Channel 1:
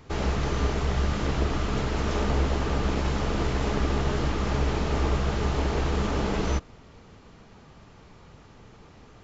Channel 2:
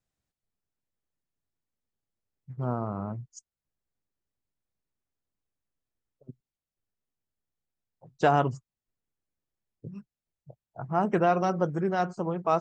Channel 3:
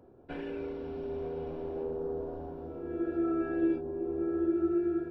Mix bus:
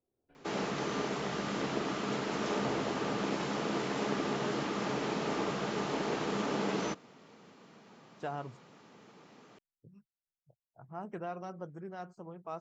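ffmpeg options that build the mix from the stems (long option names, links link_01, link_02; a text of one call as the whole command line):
ffmpeg -i stem1.wav -i stem2.wav -i stem3.wav -filter_complex "[0:a]highpass=frequency=170:width=0.5412,highpass=frequency=170:width=1.3066,adelay=350,volume=-4dB[link_01];[1:a]volume=-16.5dB[link_02];[2:a]acompressor=threshold=-37dB:ratio=6,aeval=exprs='val(0)*pow(10,-22*if(lt(mod(-1.1*n/s,1),2*abs(-1.1)/1000),1-mod(-1.1*n/s,1)/(2*abs(-1.1)/1000),(mod(-1.1*n/s,1)-2*abs(-1.1)/1000)/(1-2*abs(-1.1)/1000))/20)':channel_layout=same,volume=-9.5dB[link_03];[link_01][link_02][link_03]amix=inputs=3:normalize=0" out.wav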